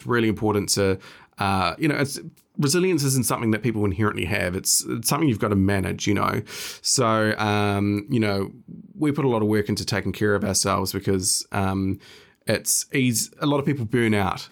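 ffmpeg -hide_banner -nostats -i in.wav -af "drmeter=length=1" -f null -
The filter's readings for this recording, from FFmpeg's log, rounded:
Channel 1: DR: 10.4
Overall DR: 10.4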